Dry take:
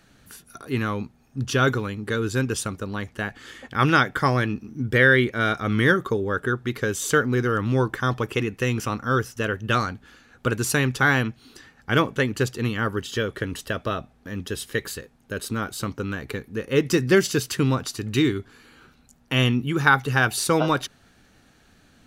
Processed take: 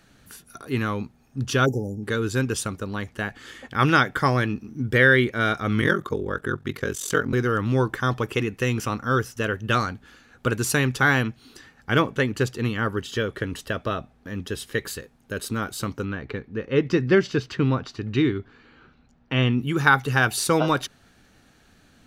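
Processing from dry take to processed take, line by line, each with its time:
0:01.66–0:02.03: time-frequency box erased 890–4,900 Hz
0:05.80–0:07.33: ring modulation 22 Hz
0:11.93–0:14.87: high-shelf EQ 5,600 Hz −4.5 dB
0:16.05–0:19.58: high-frequency loss of the air 210 metres

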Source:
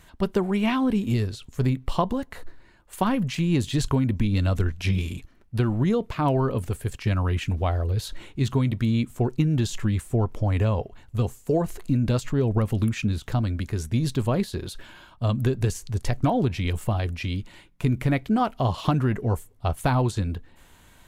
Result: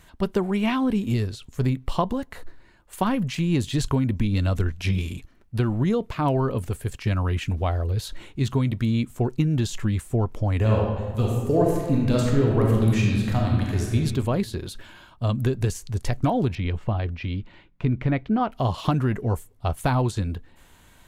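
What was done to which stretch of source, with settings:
0:10.57–0:13.95: thrown reverb, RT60 1.4 s, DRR −2 dB
0:16.55–0:18.52: high-frequency loss of the air 220 metres

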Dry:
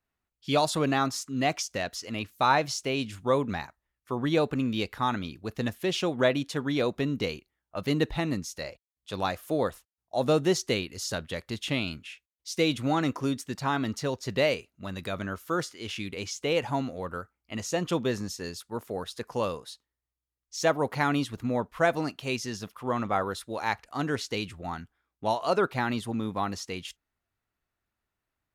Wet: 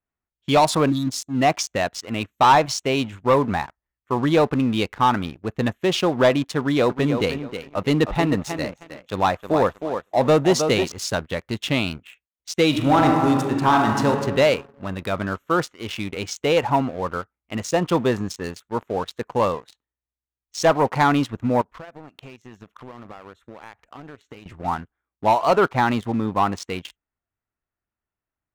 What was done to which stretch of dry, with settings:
0:00.90–0:01.34: time-frequency box erased 350–3,300 Hz
0:06.58–0:10.92: feedback echo with a high-pass in the loop 314 ms, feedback 30%, high-pass 170 Hz, level −7.5 dB
0:12.68–0:14.09: thrown reverb, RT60 1.7 s, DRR 0.5 dB
0:21.61–0:24.46: downward compressor 8 to 1, threshold −41 dBFS
whole clip: adaptive Wiener filter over 9 samples; dynamic equaliser 930 Hz, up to +6 dB, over −42 dBFS, Q 1.6; leveller curve on the samples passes 2

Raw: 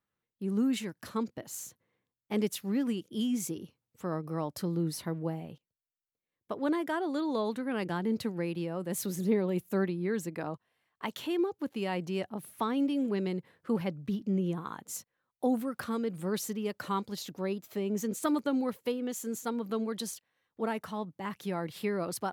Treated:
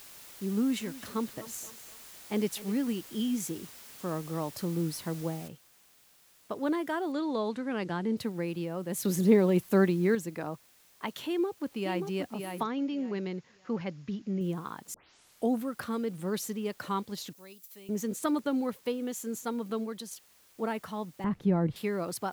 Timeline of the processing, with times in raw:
0:00.55–0:02.74: feedback echo with a high-pass in the loop 254 ms, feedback 50%, high-pass 270 Hz, level −14.5 dB
0:05.48: noise floor change −50 dB −62 dB
0:07.12–0:08.17: low-pass filter 7,100 Hz
0:09.05–0:10.15: clip gain +6 dB
0:11.27–0:12.08: delay throw 580 ms, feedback 25%, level −6 dB
0:12.63–0:14.41: Chebyshev low-pass with heavy ripple 7,000 Hz, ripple 3 dB
0:14.94: tape start 0.57 s
0:17.33–0:17.89: first-order pre-emphasis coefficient 0.9
0:19.71–0:20.11: fade out, to −7.5 dB
0:21.24–0:21.76: spectral tilt −4.5 dB per octave

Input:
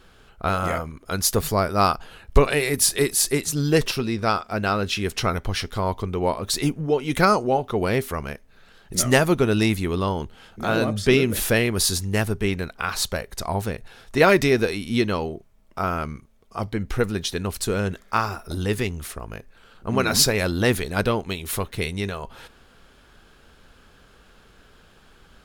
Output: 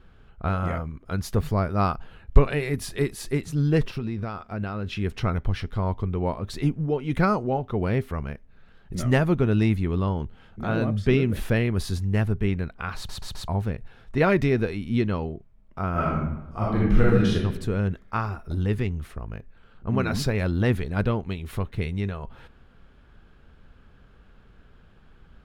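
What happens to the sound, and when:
0:03.85–0:04.91: downward compressor 4 to 1, threshold −24 dBFS
0:12.96: stutter in place 0.13 s, 4 plays
0:15.91–0:17.35: thrown reverb, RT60 0.95 s, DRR −7 dB
whole clip: bass and treble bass +9 dB, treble −14 dB; level −6 dB

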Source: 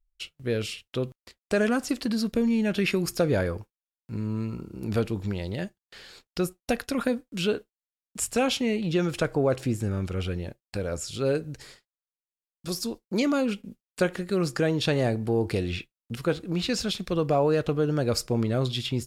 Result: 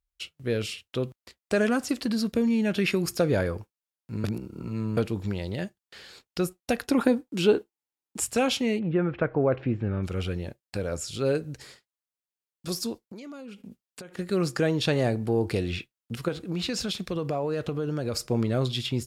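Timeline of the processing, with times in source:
0:04.24–0:04.97: reverse
0:06.84–0:08.22: hollow resonant body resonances 340/840 Hz, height 10 dB, ringing for 20 ms
0:08.78–0:10.02: low-pass filter 1,800 Hz → 3,200 Hz 24 dB per octave
0:13.04–0:14.19: downward compressor 16 to 1, threshold −38 dBFS
0:16.28–0:18.26: downward compressor 4 to 1, threshold −25 dBFS
whole clip: high-pass filter 53 Hz

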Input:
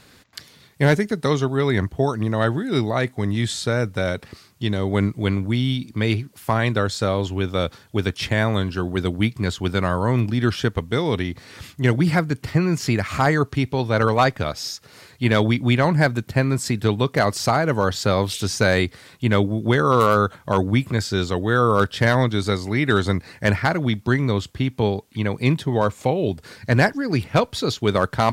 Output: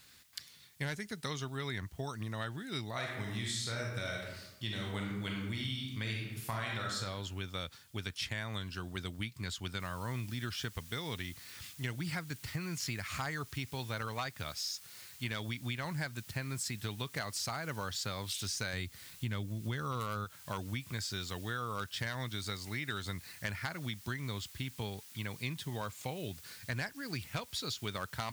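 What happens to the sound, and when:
0:02.92–0:06.96: thrown reverb, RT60 0.86 s, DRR −1.5 dB
0:09.80: noise floor change −61 dB −48 dB
0:18.73–0:20.25: low-shelf EQ 250 Hz +8.5 dB
whole clip: guitar amp tone stack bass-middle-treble 5-5-5; downward compressor, threshold −34 dBFS

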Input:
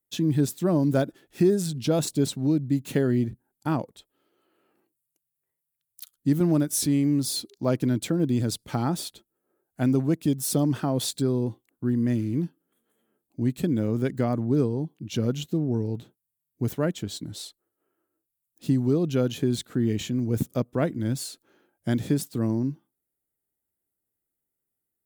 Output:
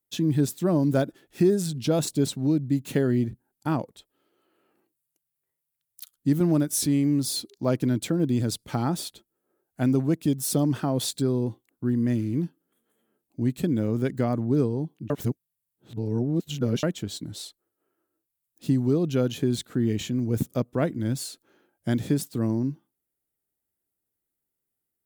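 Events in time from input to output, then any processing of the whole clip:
0:15.10–0:16.83: reverse

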